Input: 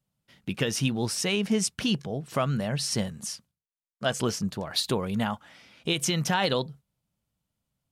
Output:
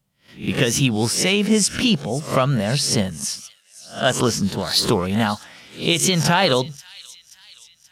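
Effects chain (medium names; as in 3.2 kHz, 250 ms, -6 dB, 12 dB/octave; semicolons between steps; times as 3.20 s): reverse spectral sustain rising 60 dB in 0.32 s; on a send: feedback echo behind a high-pass 530 ms, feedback 55%, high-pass 3 kHz, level -17 dB; on the sum: warped record 45 rpm, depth 100 cents; trim +7.5 dB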